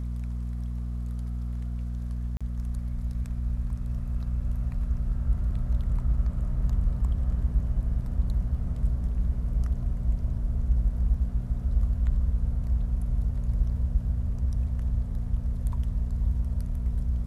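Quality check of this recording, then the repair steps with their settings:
hum 60 Hz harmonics 4 -31 dBFS
2.37–2.41 s: dropout 36 ms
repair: de-hum 60 Hz, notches 4; interpolate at 2.37 s, 36 ms

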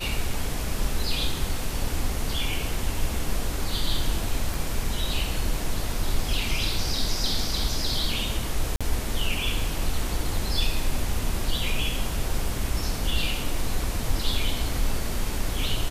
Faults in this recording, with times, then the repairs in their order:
4.54 s: pop
8.76–8.81 s: dropout 46 ms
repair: de-click; interpolate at 8.76 s, 46 ms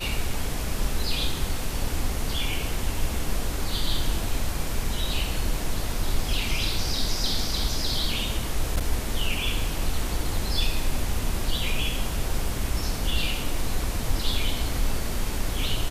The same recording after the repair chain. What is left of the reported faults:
4.54 s: pop

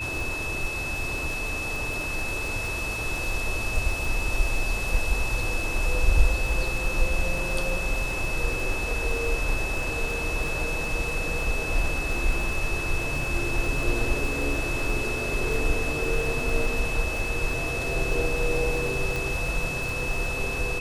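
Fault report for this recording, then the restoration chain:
crackle 28 per s -30 dBFS
whine 2.6 kHz -30 dBFS
19.16 s: pop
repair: de-click; band-stop 2.6 kHz, Q 30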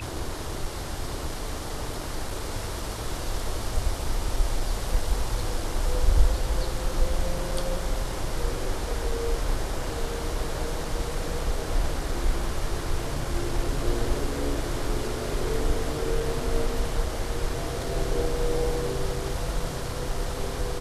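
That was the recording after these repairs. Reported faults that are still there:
nothing left

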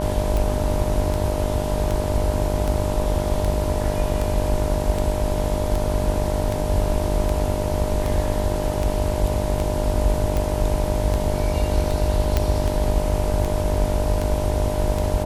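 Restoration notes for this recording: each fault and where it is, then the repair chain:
buzz 50 Hz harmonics 20 -26 dBFS
tick 78 rpm
whine 610 Hz -27 dBFS
12.37 s: pop -6 dBFS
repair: de-click; band-stop 610 Hz, Q 30; de-hum 50 Hz, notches 20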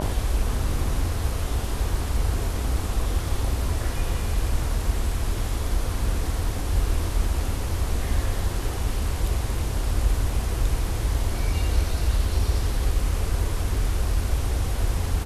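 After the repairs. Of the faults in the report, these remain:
nothing left

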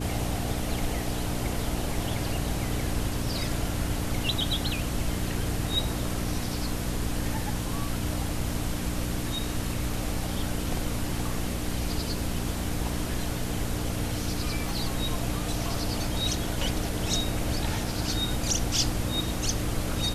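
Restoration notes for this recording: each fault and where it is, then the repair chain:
hum 60 Hz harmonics 5 -33 dBFS
14.69 s: pop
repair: de-click; de-hum 60 Hz, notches 5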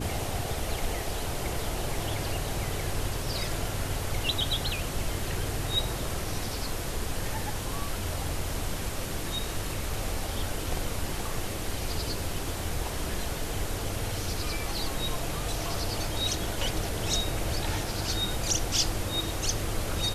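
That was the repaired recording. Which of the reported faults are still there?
14.69 s: pop

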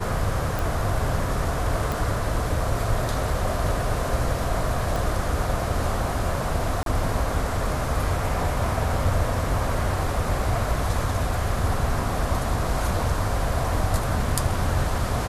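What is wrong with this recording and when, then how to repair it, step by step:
0.59 s: pop
1.92 s: pop
4.96 s: pop
6.83–6.86 s: dropout 32 ms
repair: de-click; interpolate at 6.83 s, 32 ms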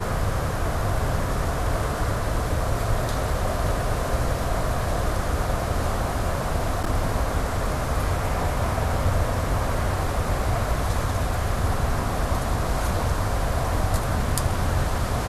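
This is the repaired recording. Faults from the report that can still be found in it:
4.96 s: pop

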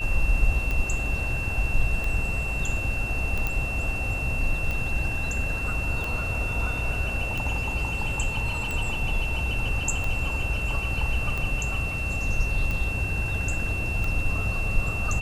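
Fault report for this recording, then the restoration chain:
tick 45 rpm -17 dBFS
whine 2.7 kHz -30 dBFS
3.47 s: pop -13 dBFS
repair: de-click; band-stop 2.7 kHz, Q 30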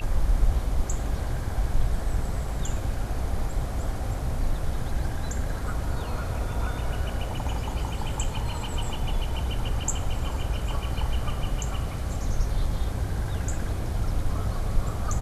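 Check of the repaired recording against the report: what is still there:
3.47 s: pop

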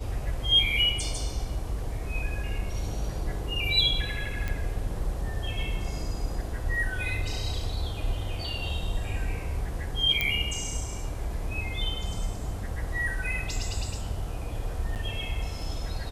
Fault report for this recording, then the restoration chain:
4.48 s: pop
10.21 s: pop -11 dBFS
14.95–14.96 s: dropout 8.7 ms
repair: de-click; interpolate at 14.95 s, 8.7 ms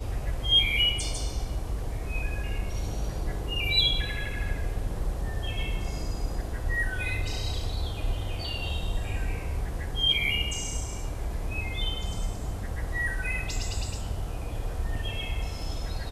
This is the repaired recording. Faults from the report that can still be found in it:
nothing left

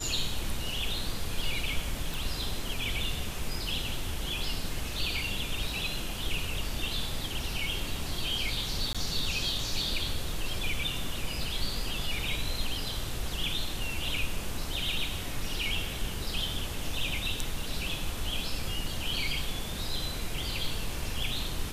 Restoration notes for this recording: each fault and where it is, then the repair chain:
2.14 s: pop
8.93–8.95 s: dropout 16 ms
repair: de-click; interpolate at 8.93 s, 16 ms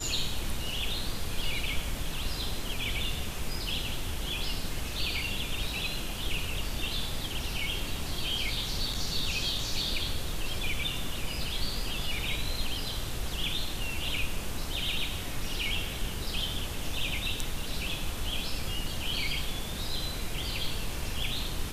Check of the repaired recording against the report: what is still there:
nothing left

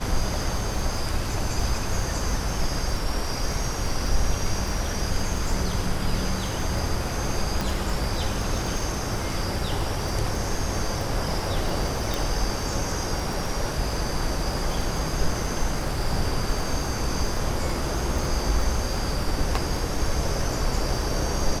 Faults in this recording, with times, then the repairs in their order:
crackle 22 per s -29 dBFS
7.61 s: pop
12.14 s: pop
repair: de-click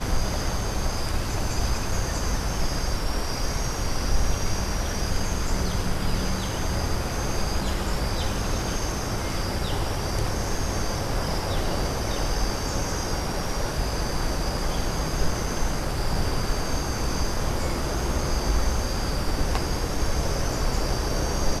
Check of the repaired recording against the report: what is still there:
nothing left

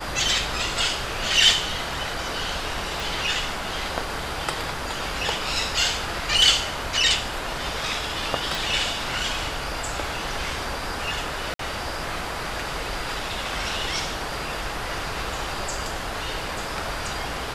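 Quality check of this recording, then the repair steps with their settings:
3.00 s: pop
8.55 s: pop
11.54–11.59 s: dropout 53 ms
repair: de-click; interpolate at 11.54 s, 53 ms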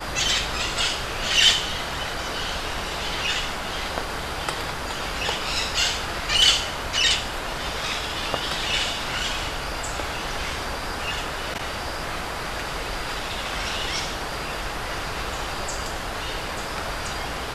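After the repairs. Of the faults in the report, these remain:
8.55 s: pop

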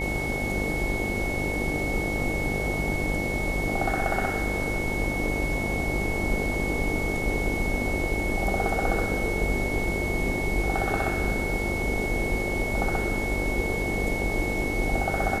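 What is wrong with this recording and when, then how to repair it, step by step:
buzz 50 Hz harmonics 18 -32 dBFS
whine 2.2 kHz -30 dBFS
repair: de-hum 50 Hz, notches 18; band-stop 2.2 kHz, Q 30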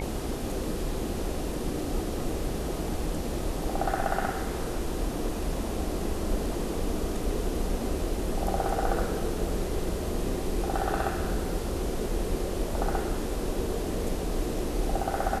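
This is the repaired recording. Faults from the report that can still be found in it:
nothing left

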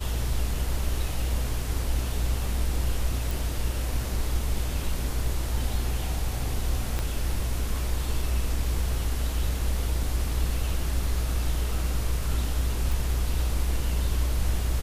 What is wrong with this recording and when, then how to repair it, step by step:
3.31 s: pop
6.99 s: pop -15 dBFS
12.92 s: pop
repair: de-click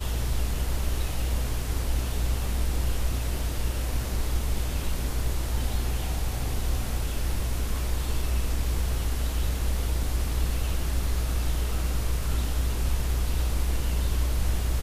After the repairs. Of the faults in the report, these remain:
6.99 s: pop

